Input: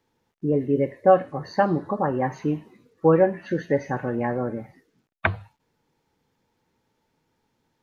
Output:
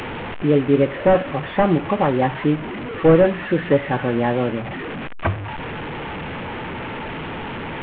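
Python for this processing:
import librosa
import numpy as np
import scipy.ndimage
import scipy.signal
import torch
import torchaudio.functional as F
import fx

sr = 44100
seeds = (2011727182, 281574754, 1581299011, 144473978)

y = fx.delta_mod(x, sr, bps=16000, step_db=-29.0)
y = F.gain(torch.from_numpy(y), 6.0).numpy()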